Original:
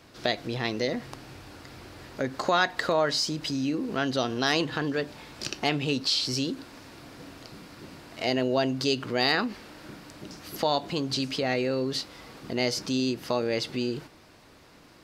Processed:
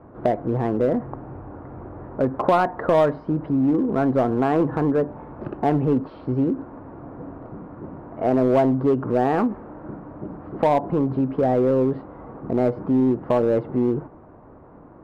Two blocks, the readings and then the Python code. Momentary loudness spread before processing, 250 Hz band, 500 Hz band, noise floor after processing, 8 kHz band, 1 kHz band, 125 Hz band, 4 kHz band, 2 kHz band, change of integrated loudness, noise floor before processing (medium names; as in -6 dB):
21 LU, +9.0 dB, +8.0 dB, -46 dBFS, under -15 dB, +6.5 dB, +9.0 dB, under -15 dB, -5.5 dB, +6.0 dB, -54 dBFS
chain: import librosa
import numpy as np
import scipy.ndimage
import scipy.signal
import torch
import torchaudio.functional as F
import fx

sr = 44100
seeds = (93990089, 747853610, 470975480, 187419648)

p1 = scipy.signal.sosfilt(scipy.signal.butter(4, 1100.0, 'lowpass', fs=sr, output='sos'), x)
p2 = 10.0 ** (-25.5 / 20.0) * (np.abs((p1 / 10.0 ** (-25.5 / 20.0) + 3.0) % 4.0 - 2.0) - 1.0)
p3 = p1 + (p2 * librosa.db_to_amplitude(-9.0))
y = p3 * librosa.db_to_amplitude(7.0)